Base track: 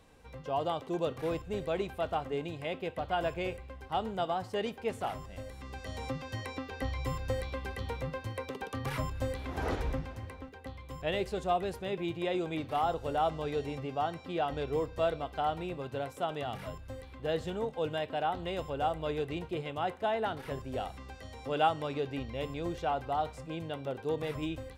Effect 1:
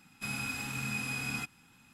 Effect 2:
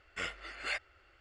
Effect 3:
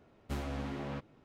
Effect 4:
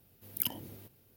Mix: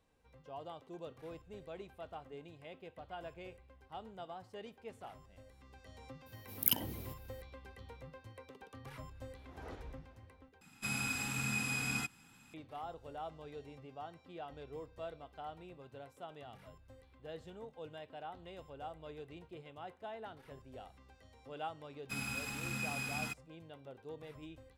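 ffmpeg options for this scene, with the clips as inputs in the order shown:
ffmpeg -i bed.wav -i cue0.wav -i cue1.wav -i cue2.wav -i cue3.wav -filter_complex "[1:a]asplit=2[link_01][link_02];[0:a]volume=-15dB[link_03];[4:a]acontrast=21[link_04];[link_01]equalizer=frequency=7600:width=6.9:gain=4.5[link_05];[link_02]aeval=exprs='sgn(val(0))*max(abs(val(0))-0.00237,0)':channel_layout=same[link_06];[link_03]asplit=2[link_07][link_08];[link_07]atrim=end=10.614[link_09];[link_05]atrim=end=1.93,asetpts=PTS-STARTPTS,volume=-1dB[link_10];[link_08]atrim=start=12.536[link_11];[link_04]atrim=end=1.16,asetpts=PTS-STARTPTS,volume=-2.5dB,afade=type=in:duration=0.004:curve=hsin,afade=type=out:start_time=1.156:duration=0.004:curve=hsin,adelay=276066S[link_12];[link_06]atrim=end=1.93,asetpts=PTS-STARTPTS,volume=-3dB,afade=type=in:duration=0.004:curve=hsin,afade=type=out:start_time=1.926:duration=0.004:curve=hsin,adelay=21880[link_13];[link_09][link_10]acrossfade=duration=0.004:curve1=hsin:curve2=hsin[link_14];[link_14][link_11]acrossfade=duration=0.004:curve1=hsin:curve2=hsin[link_15];[link_15][link_12][link_13]amix=inputs=3:normalize=0" out.wav

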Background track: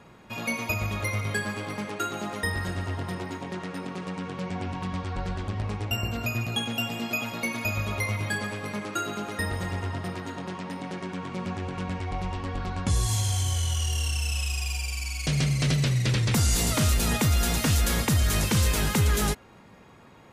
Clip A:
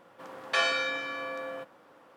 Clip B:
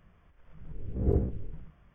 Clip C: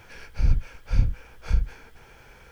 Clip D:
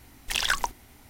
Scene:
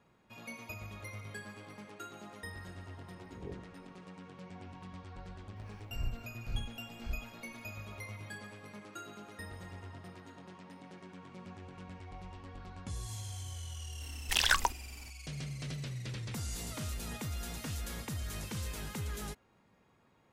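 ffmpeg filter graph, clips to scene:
ffmpeg -i bed.wav -i cue0.wav -i cue1.wav -i cue2.wav -i cue3.wav -filter_complex "[0:a]volume=-16.5dB[link_01];[2:a]highpass=frequency=150:poles=1,atrim=end=1.94,asetpts=PTS-STARTPTS,volume=-15.5dB,afade=type=in:duration=0.004:curve=hsin,afade=type=out:start_time=1.936:duration=0.004:curve=hsin,adelay=2360[link_02];[3:a]atrim=end=2.51,asetpts=PTS-STARTPTS,volume=-17dB,afade=type=in:duration=0.004:curve=hsin,afade=type=out:start_time=2.506:duration=0.004:curve=hsin,adelay=5560[link_03];[4:a]atrim=end=1.09,asetpts=PTS-STARTPTS,volume=-2dB,afade=type=in:duration=0.004:curve=hsin,afade=type=out:start_time=1.086:duration=0.004:curve=hsin,adelay=14010[link_04];[link_01][link_02][link_03][link_04]amix=inputs=4:normalize=0" out.wav

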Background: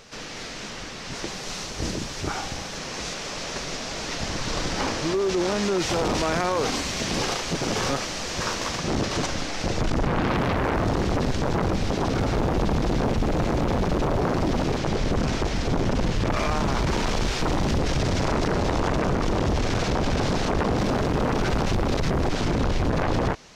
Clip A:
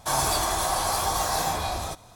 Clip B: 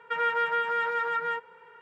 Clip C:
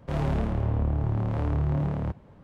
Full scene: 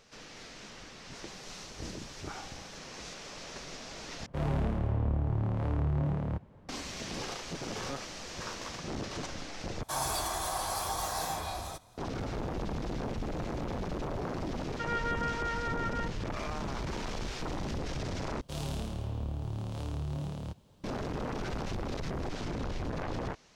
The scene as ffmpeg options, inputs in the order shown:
ffmpeg -i bed.wav -i cue0.wav -i cue1.wav -i cue2.wav -filter_complex "[3:a]asplit=2[link_01][link_02];[0:a]volume=-12.5dB[link_03];[link_02]aexciter=amount=9:drive=2.8:freq=2900[link_04];[link_03]asplit=4[link_05][link_06][link_07][link_08];[link_05]atrim=end=4.264[link_09];[link_01]atrim=end=2.43,asetpts=PTS-STARTPTS,volume=-4dB[link_10];[link_06]atrim=start=6.686:end=9.834[link_11];[1:a]atrim=end=2.15,asetpts=PTS-STARTPTS,volume=-8.5dB[link_12];[link_07]atrim=start=11.976:end=18.414[link_13];[link_04]atrim=end=2.43,asetpts=PTS-STARTPTS,volume=-10dB[link_14];[link_08]atrim=start=20.836[link_15];[2:a]atrim=end=1.81,asetpts=PTS-STARTPTS,volume=-7.5dB,afade=type=in:duration=0.004:curve=hsin,afade=type=out:start_time=1.806:duration=0.004:curve=hsin,adelay=14690[link_16];[link_09][link_10]acrossfade=duration=0.004:curve1=hsin:curve2=hsin[link_17];[link_17][link_11]acrossfade=duration=0.004:curve1=hsin:curve2=hsin[link_18];[link_18][link_12]acrossfade=duration=0.004:curve1=hsin:curve2=hsin[link_19];[link_19][link_13]acrossfade=duration=0.004:curve1=hsin:curve2=hsin[link_20];[link_20][link_14]acrossfade=duration=0.004:curve1=hsin:curve2=hsin[link_21];[link_21][link_15]acrossfade=duration=0.004:curve1=hsin:curve2=hsin[link_22];[link_22][link_16]amix=inputs=2:normalize=0" out.wav

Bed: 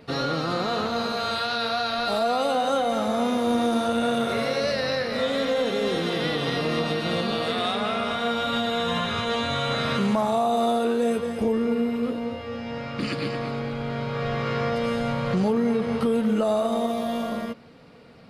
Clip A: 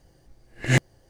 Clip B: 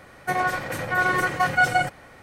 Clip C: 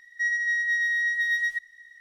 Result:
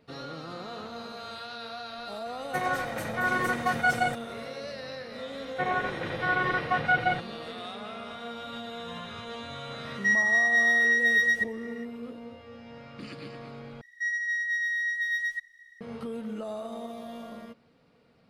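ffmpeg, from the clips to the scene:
ffmpeg -i bed.wav -i cue0.wav -i cue1.wav -i cue2.wav -filter_complex "[2:a]asplit=2[link_01][link_02];[3:a]asplit=2[link_03][link_04];[0:a]volume=-13.5dB[link_05];[link_02]aresample=8000,aresample=44100[link_06];[link_03]acontrast=69[link_07];[link_05]asplit=2[link_08][link_09];[link_08]atrim=end=13.814[link_10];[link_04]atrim=end=2,asetpts=PTS-STARTPTS,volume=-4dB[link_11];[link_09]atrim=start=15.806[link_12];[link_01]atrim=end=2.22,asetpts=PTS-STARTPTS,volume=-5.5dB,afade=type=in:duration=0.004:curve=hsin,afade=type=out:start_time=2.216:duration=0.004:curve=hsin,adelay=2260[link_13];[link_06]atrim=end=2.22,asetpts=PTS-STARTPTS,volume=-5dB,afade=type=in:duration=0.004:curve=hsin,afade=type=out:start_time=2.216:duration=0.004:curve=hsin,adelay=5310[link_14];[link_07]atrim=end=2,asetpts=PTS-STARTPTS,volume=-4dB,afade=type=in:duration=0.004:curve=hsin,afade=type=out:start_time=1.996:duration=0.004:curve=hsin,adelay=9850[link_15];[link_10][link_11]acrossfade=duration=0.004:curve1=hsin:curve2=hsin[link_16];[link_16][link_12]acrossfade=duration=0.004:curve1=hsin:curve2=hsin[link_17];[link_17][link_13][link_14][link_15]amix=inputs=4:normalize=0" out.wav

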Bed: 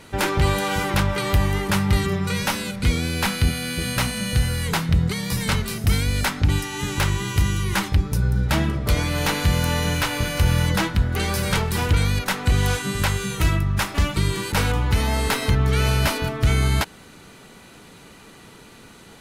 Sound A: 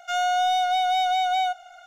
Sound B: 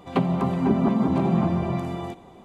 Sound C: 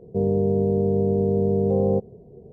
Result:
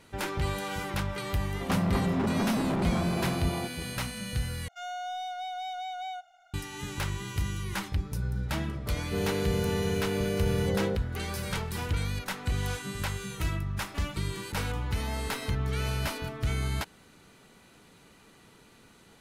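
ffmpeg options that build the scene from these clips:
ffmpeg -i bed.wav -i cue0.wav -i cue1.wav -i cue2.wav -filter_complex "[0:a]volume=-11dB[link_01];[2:a]volume=24.5dB,asoftclip=hard,volume=-24.5dB[link_02];[link_01]asplit=2[link_03][link_04];[link_03]atrim=end=4.684[link_05];[1:a]atrim=end=1.86,asetpts=PTS-STARTPTS,volume=-14dB[link_06];[link_04]atrim=start=6.536[link_07];[link_02]atrim=end=2.44,asetpts=PTS-STARTPTS,volume=-1.5dB,afade=type=in:duration=0.004:curve=hsin,afade=type=out:start_time=2.436:duration=0.004:curve=hsin,adelay=1540[link_08];[3:a]atrim=end=2.52,asetpts=PTS-STARTPTS,volume=-9.5dB,afade=type=in:duration=0.004:curve=hsin,afade=type=out:start_time=2.516:duration=0.004:curve=hsin,adelay=8970[link_09];[link_05][link_06]acrossfade=duration=0.004:curve1=hsin:curve2=hsin[link_10];[link_10][link_07]acrossfade=duration=0.004:curve1=hsin:curve2=hsin[link_11];[link_11][link_08][link_09]amix=inputs=3:normalize=0" out.wav

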